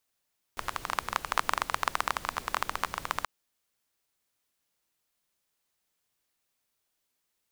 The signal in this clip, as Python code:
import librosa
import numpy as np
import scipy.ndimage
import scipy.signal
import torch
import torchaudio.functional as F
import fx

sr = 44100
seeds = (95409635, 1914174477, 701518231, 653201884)

y = fx.rain(sr, seeds[0], length_s=2.68, drops_per_s=17.0, hz=1100.0, bed_db=-12.5)